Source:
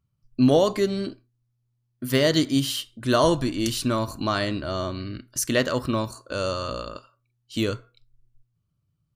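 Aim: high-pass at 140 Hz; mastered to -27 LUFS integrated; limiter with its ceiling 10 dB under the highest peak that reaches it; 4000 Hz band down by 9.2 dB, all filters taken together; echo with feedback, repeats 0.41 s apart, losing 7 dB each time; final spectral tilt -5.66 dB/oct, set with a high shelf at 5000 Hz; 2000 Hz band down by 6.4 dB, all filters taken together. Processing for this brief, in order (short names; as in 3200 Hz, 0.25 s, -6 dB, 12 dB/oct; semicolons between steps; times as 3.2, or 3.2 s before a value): HPF 140 Hz; bell 2000 Hz -5.5 dB; bell 4000 Hz -6.5 dB; high shelf 5000 Hz -8 dB; limiter -18.5 dBFS; feedback echo 0.41 s, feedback 45%, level -7 dB; gain +3 dB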